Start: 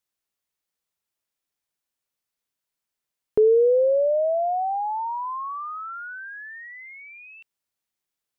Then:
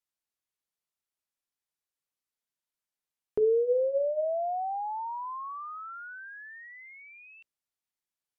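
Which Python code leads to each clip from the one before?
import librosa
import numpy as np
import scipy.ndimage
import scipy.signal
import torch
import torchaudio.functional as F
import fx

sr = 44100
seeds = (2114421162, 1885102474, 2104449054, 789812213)

y = fx.env_lowpass_down(x, sr, base_hz=1400.0, full_db=-17.0)
y = fx.hum_notches(y, sr, base_hz=60, count=10)
y = F.gain(torch.from_numpy(y), -7.0).numpy()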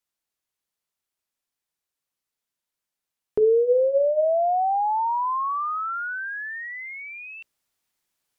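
y = fx.rider(x, sr, range_db=4, speed_s=2.0)
y = F.gain(torch.from_numpy(y), 9.0).numpy()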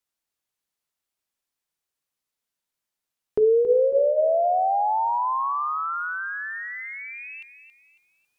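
y = fx.echo_feedback(x, sr, ms=275, feedback_pct=34, wet_db=-11)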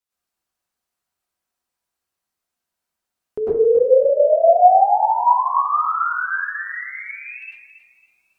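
y = fx.rev_plate(x, sr, seeds[0], rt60_s=0.56, hf_ratio=0.4, predelay_ms=90, drr_db=-9.5)
y = F.gain(torch.from_numpy(y), -4.5).numpy()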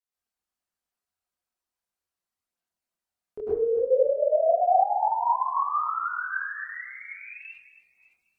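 y = fx.chorus_voices(x, sr, voices=4, hz=1.4, base_ms=24, depth_ms=3.0, mix_pct=55)
y = F.gain(torch.from_numpy(y), -5.0).numpy()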